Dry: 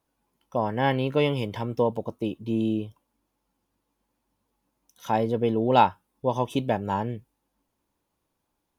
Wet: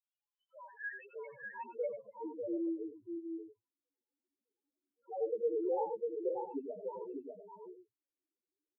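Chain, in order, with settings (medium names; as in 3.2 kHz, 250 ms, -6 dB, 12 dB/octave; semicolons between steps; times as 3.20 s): reverb removal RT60 1.2 s; band-pass sweep 3.3 kHz -> 400 Hz, 0.30–2.52 s; loudest bins only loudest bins 1; on a send: multi-tap echo 87/596/693 ms -8/-5/-12.5 dB; on the sum: trim +1.5 dB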